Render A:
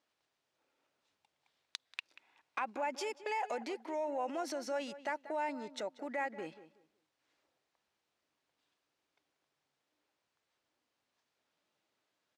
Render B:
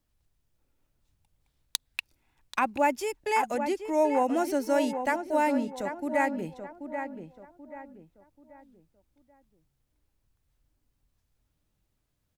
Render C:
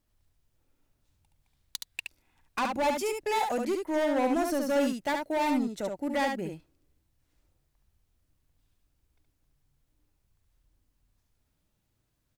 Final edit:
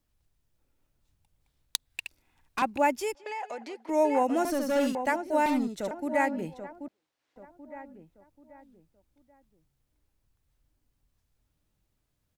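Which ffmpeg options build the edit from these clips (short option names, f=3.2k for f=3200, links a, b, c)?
-filter_complex "[2:a]asplit=3[a][b][c];[0:a]asplit=2[d][e];[1:a]asplit=6[f][g][h][i][j][k];[f]atrim=end=1.902[l];[a]atrim=start=1.898:end=2.622[m];[g]atrim=start=2.618:end=3.152[n];[d]atrim=start=3.148:end=3.892[o];[h]atrim=start=3.888:end=4.452[p];[b]atrim=start=4.448:end=4.952[q];[i]atrim=start=4.948:end=5.462[r];[c]atrim=start=5.458:end=5.912[s];[j]atrim=start=5.908:end=6.882[t];[e]atrim=start=6.878:end=7.362[u];[k]atrim=start=7.358[v];[l][m]acrossfade=d=0.004:c1=hsin:c2=hsin[w];[w][n]acrossfade=d=0.004:c1=hsin:c2=hsin[x];[x][o]acrossfade=d=0.004:c1=hsin:c2=hsin[y];[y][p]acrossfade=d=0.004:c1=hsin:c2=hsin[z];[z][q]acrossfade=d=0.004:c1=hsin:c2=hsin[aa];[aa][r]acrossfade=d=0.004:c1=hsin:c2=hsin[ab];[ab][s]acrossfade=d=0.004:c1=hsin:c2=hsin[ac];[ac][t]acrossfade=d=0.004:c1=hsin:c2=hsin[ad];[ad][u]acrossfade=d=0.004:c1=hsin:c2=hsin[ae];[ae][v]acrossfade=d=0.004:c1=hsin:c2=hsin"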